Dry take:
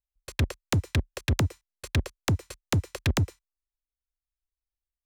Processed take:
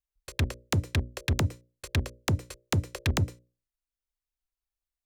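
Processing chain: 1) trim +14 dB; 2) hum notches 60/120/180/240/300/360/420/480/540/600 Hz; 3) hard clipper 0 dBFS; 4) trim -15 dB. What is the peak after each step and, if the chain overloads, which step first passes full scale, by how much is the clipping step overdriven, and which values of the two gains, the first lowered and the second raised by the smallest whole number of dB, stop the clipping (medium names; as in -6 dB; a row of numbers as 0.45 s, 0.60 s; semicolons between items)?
-6.0 dBFS, -3.0 dBFS, -3.0 dBFS, -18.0 dBFS; nothing clips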